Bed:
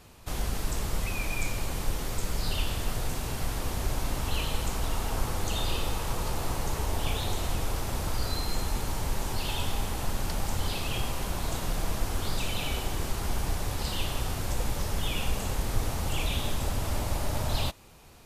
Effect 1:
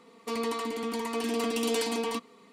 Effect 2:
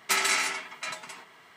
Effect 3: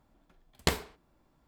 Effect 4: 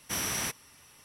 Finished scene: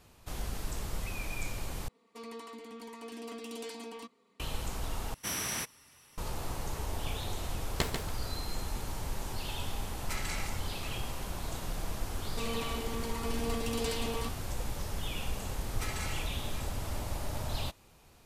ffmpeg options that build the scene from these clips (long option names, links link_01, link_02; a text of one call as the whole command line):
ffmpeg -i bed.wav -i cue0.wav -i cue1.wav -i cue2.wav -i cue3.wav -filter_complex "[1:a]asplit=2[link_01][link_02];[2:a]asplit=2[link_03][link_04];[0:a]volume=-6.5dB[link_05];[3:a]aecho=1:1:142|284|426:0.501|0.105|0.0221[link_06];[link_04]aecho=1:1:4.7:0.65[link_07];[link_05]asplit=3[link_08][link_09][link_10];[link_08]atrim=end=1.884[link_11];[link_01]atrim=end=2.52,asetpts=PTS-STARTPTS,volume=-13.5dB[link_12];[link_09]atrim=start=4.396:end=5.144[link_13];[4:a]atrim=end=1.04,asetpts=PTS-STARTPTS,volume=-3dB[link_14];[link_10]atrim=start=6.176[link_15];[link_06]atrim=end=1.47,asetpts=PTS-STARTPTS,volume=-5dB,afade=type=in:duration=0.004:curve=hsin,afade=type=out:start_time=1.466:duration=0.004:curve=hsin,adelay=7130[link_16];[link_03]atrim=end=1.56,asetpts=PTS-STARTPTS,volume=-15dB,afade=type=in:duration=0.004:curve=hsin,afade=type=out:start_time=1.556:duration=0.004:curve=hsin,adelay=10000[link_17];[link_02]atrim=end=2.52,asetpts=PTS-STARTPTS,volume=-6.5dB,afade=type=in:duration=0.004:curve=hsin,afade=type=out:start_time=2.516:duration=0.004:curve=hsin,adelay=12100[link_18];[link_07]atrim=end=1.56,asetpts=PTS-STARTPTS,volume=-17.5dB,afade=type=in:duration=0.004:curve=hsin,afade=type=out:start_time=1.556:duration=0.004:curve=hsin,adelay=15710[link_19];[link_11][link_12]acrossfade=duration=0.004:curve1=hsin:curve2=hsin[link_20];[link_20][link_13]acrossfade=duration=0.004:curve1=hsin:curve2=hsin[link_21];[link_21][link_14]acrossfade=duration=0.004:curve1=hsin:curve2=hsin[link_22];[link_22][link_15]acrossfade=duration=0.004:curve1=hsin:curve2=hsin[link_23];[link_23][link_16][link_17][link_18][link_19]amix=inputs=5:normalize=0" out.wav